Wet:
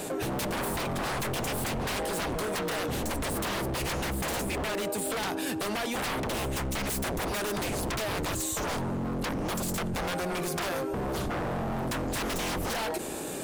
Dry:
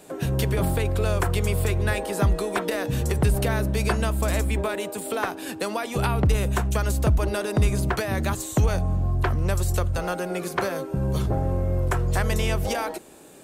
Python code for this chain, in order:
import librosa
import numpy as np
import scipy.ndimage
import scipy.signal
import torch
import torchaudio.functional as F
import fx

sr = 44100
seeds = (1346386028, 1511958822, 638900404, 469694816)

y = fx.high_shelf(x, sr, hz=5400.0, db=6.5, at=(6.87, 7.64))
y = 10.0 ** (-27.0 / 20.0) * (np.abs((y / 10.0 ** (-27.0 / 20.0) + 3.0) % 4.0 - 2.0) - 1.0)
y = fx.env_flatten(y, sr, amount_pct=70)